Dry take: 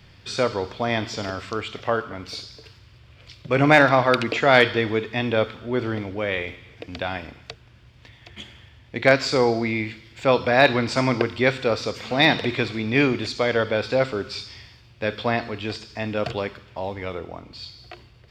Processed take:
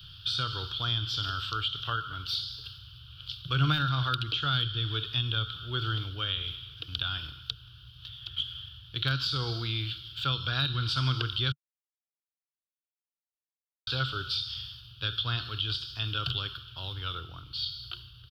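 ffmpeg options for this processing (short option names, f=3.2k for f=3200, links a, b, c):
-filter_complex "[0:a]asplit=3[a][b][c];[a]atrim=end=11.52,asetpts=PTS-STARTPTS,afade=t=out:st=11.516:d=0.004:c=hsin[d];[b]atrim=start=11.52:end=13.87,asetpts=PTS-STARTPTS,volume=0[e];[c]atrim=start=13.87,asetpts=PTS-STARTPTS,afade=t=in:d=0.004:c=hsin[f];[d][e][f]concat=n=3:v=0:a=1,firequalizer=gain_entry='entry(140,0);entry(210,-23);entry(310,-13);entry(600,-24);entry(870,-17);entry(1400,5);entry(2000,-23);entry(3100,14);entry(7100,-13);entry(11000,7)':delay=0.05:min_phase=1,acrossover=split=270[g][h];[h]acompressor=threshold=-28dB:ratio=6[i];[g][i]amix=inputs=2:normalize=0"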